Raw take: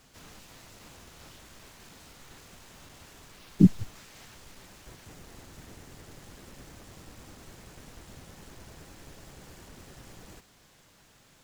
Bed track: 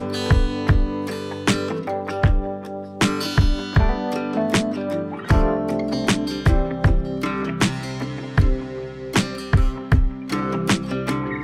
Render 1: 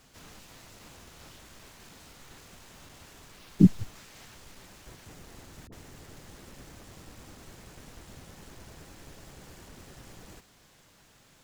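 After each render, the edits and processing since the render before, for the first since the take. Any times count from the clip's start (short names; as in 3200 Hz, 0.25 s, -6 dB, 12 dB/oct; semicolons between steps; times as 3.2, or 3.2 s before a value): 5.67–6.38 dispersion highs, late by 54 ms, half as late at 540 Hz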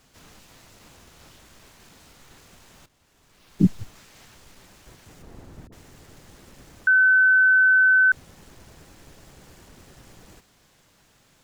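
2.86–3.67 fade in quadratic, from -14.5 dB; 5.22–5.68 tilt shelf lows +6.5 dB, about 1300 Hz; 6.87–8.12 bleep 1520 Hz -13 dBFS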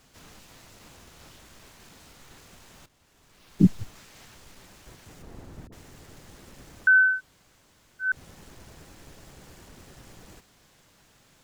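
7.09–8.11 room tone, crossfade 0.24 s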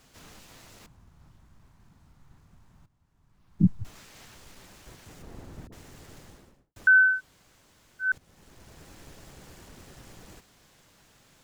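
0.86–3.85 EQ curve 150 Hz 0 dB, 490 Hz -17 dB, 960 Hz -9 dB, 2800 Hz -20 dB; 6.16–6.76 studio fade out; 8.18–8.94 fade in, from -15 dB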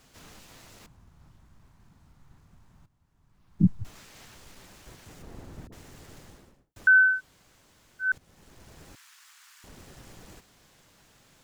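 8.95–9.64 steep high-pass 1100 Hz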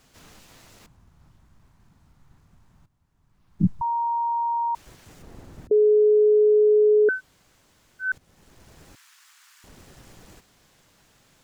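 3.81–4.75 bleep 936 Hz -21.5 dBFS; 5.71–7.09 bleep 423 Hz -13.5 dBFS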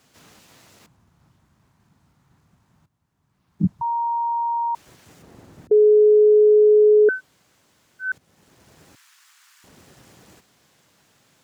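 HPF 100 Hz 12 dB/oct; dynamic EQ 510 Hz, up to +4 dB, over -29 dBFS, Q 0.73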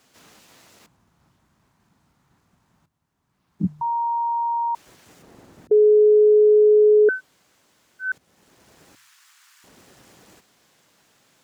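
bell 100 Hz -6 dB 1.7 oct; de-hum 74.85 Hz, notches 2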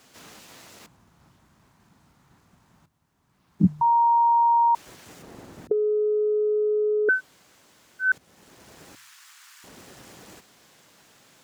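negative-ratio compressor -18 dBFS, ratio -0.5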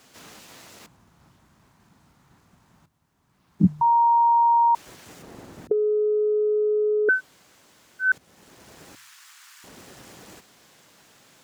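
gain +1 dB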